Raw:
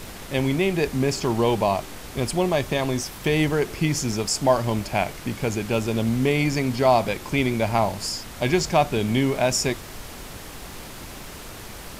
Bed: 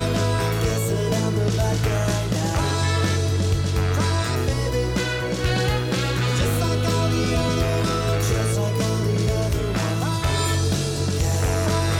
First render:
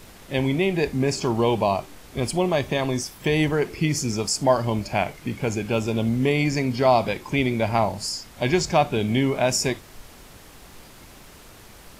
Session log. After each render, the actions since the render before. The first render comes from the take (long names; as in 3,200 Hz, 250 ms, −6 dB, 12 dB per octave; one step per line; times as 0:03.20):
noise reduction from a noise print 8 dB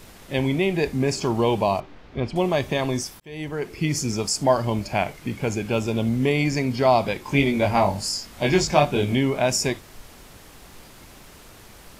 0:01.80–0:02.36: high-frequency loss of the air 240 metres
0:03.20–0:03.96: fade in linear
0:07.23–0:09.15: double-tracking delay 21 ms −2 dB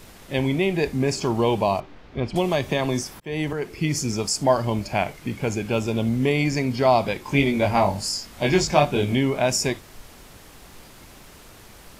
0:02.34–0:03.53: multiband upward and downward compressor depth 70%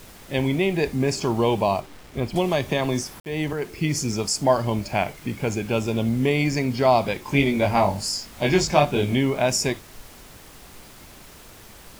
bit-depth reduction 8 bits, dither none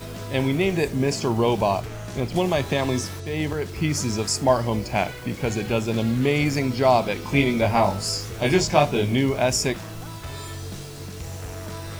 mix in bed −13.5 dB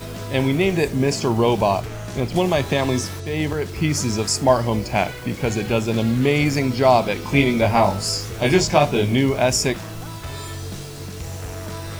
level +3 dB
brickwall limiter −2 dBFS, peak gain reduction 3 dB